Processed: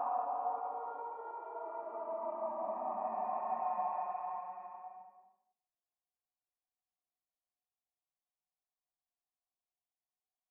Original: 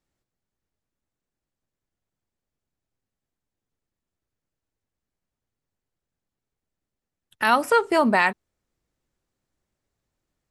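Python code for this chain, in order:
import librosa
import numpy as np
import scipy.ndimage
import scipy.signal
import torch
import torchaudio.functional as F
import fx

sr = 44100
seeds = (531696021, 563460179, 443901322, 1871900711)

y = fx.formant_cascade(x, sr, vowel='a')
y = fx.paulstretch(y, sr, seeds[0], factor=5.5, window_s=0.5, from_s=7.54)
y = y * 10.0 ** (-7.0 / 20.0)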